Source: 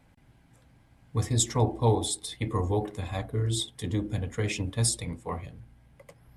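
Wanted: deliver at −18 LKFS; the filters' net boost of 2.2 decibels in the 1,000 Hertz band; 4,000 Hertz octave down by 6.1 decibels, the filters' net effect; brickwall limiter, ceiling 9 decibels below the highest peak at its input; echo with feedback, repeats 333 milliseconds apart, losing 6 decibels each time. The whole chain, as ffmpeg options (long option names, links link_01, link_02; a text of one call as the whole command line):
ffmpeg -i in.wav -af "equalizer=frequency=1000:width_type=o:gain=3,equalizer=frequency=4000:width_type=o:gain=-7.5,alimiter=limit=-20dB:level=0:latency=1,aecho=1:1:333|666|999|1332|1665|1998:0.501|0.251|0.125|0.0626|0.0313|0.0157,volume=12.5dB" out.wav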